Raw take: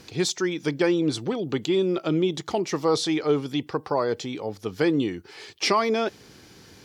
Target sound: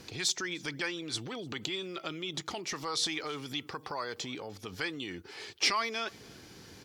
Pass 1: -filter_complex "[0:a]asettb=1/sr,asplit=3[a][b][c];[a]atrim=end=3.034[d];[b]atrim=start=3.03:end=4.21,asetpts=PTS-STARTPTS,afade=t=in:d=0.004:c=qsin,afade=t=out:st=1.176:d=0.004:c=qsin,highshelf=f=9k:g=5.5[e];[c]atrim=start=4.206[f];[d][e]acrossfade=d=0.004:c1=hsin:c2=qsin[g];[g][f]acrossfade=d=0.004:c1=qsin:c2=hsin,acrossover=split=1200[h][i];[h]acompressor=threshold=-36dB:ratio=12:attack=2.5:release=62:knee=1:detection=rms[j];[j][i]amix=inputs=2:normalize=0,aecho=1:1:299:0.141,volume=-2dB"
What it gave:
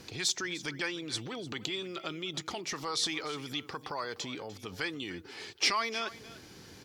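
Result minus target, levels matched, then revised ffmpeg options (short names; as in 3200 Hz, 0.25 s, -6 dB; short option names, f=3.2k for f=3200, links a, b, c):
echo-to-direct +9.5 dB
-filter_complex "[0:a]asettb=1/sr,asplit=3[a][b][c];[a]atrim=end=3.034[d];[b]atrim=start=3.03:end=4.21,asetpts=PTS-STARTPTS,afade=t=in:d=0.004:c=qsin,afade=t=out:st=1.176:d=0.004:c=qsin,highshelf=f=9k:g=5.5[e];[c]atrim=start=4.206[f];[d][e]acrossfade=d=0.004:c1=hsin:c2=qsin[g];[g][f]acrossfade=d=0.004:c1=qsin:c2=hsin,acrossover=split=1200[h][i];[h]acompressor=threshold=-36dB:ratio=12:attack=2.5:release=62:knee=1:detection=rms[j];[j][i]amix=inputs=2:normalize=0,aecho=1:1:299:0.0473,volume=-2dB"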